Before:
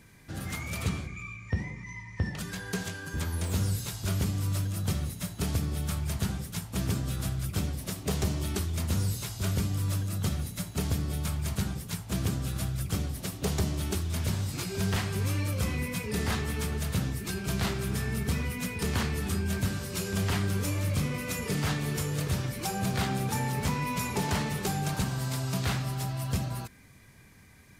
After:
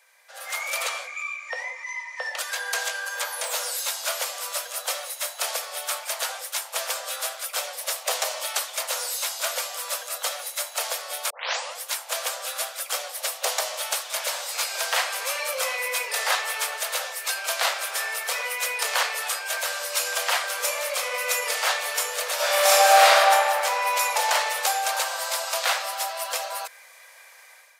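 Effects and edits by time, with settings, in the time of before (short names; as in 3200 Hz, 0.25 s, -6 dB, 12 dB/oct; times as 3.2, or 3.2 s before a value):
11.3 tape start 0.50 s
22.35–23.16 reverb throw, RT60 2.3 s, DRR -11 dB
whole clip: steep high-pass 500 Hz 96 dB/oct; AGC gain up to 11 dB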